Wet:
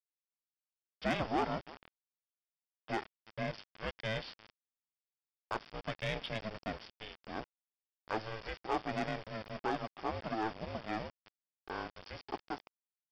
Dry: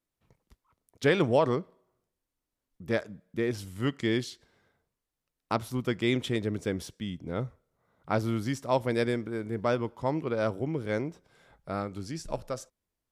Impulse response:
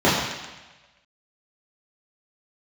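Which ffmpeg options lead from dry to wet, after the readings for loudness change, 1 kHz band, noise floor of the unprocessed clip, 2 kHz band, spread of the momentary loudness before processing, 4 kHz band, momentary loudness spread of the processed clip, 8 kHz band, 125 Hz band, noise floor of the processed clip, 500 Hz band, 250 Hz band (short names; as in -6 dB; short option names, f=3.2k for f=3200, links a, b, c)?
-9.0 dB, -3.0 dB, under -85 dBFS, -5.5 dB, 11 LU, -5.5 dB, 14 LU, -15.0 dB, -12.5 dB, under -85 dBFS, -11.5 dB, -11.5 dB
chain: -filter_complex "[0:a]aeval=exprs='if(lt(val(0),0),0.447*val(0),val(0))':c=same,highpass=430,asplit=2[a][b];[b]aecho=0:1:332:0.0631[c];[a][c]amix=inputs=2:normalize=0,aeval=exprs='val(0)*sin(2*PI*220*n/s)':c=same,aresample=11025,acrusher=bits=7:mix=0:aa=0.000001,aresample=44100,asoftclip=type=tanh:threshold=-26dB,bandreject=f=4k:w=6.4,volume=2dB"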